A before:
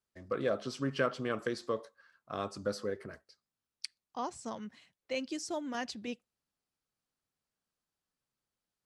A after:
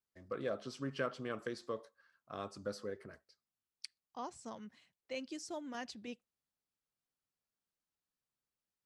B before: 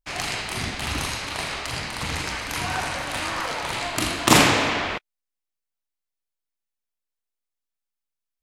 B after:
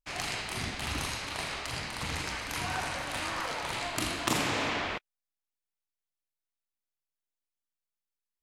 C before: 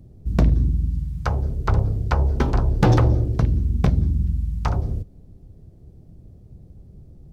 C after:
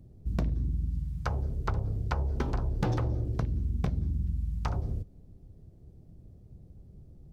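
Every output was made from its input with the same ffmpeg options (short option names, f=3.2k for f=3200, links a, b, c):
-af "acompressor=threshold=-19dB:ratio=6,volume=-6.5dB"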